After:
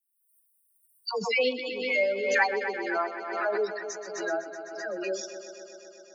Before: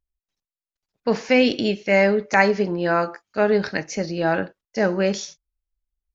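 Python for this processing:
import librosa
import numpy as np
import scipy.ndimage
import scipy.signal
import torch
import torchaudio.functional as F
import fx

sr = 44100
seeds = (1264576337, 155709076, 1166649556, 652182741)

p1 = fx.bin_expand(x, sr, power=3.0)
p2 = scipy.signal.sosfilt(scipy.signal.butter(4, 340.0, 'highpass', fs=sr, output='sos'), p1)
p3 = fx.high_shelf(p2, sr, hz=3800.0, db=5.0)
p4 = fx.dispersion(p3, sr, late='lows', ms=96.0, hz=870.0)
p5 = p4 + fx.echo_heads(p4, sr, ms=127, heads='first and second', feedback_pct=73, wet_db=-14, dry=0)
p6 = fx.pre_swell(p5, sr, db_per_s=47.0)
y = p6 * 10.0 ** (-5.0 / 20.0)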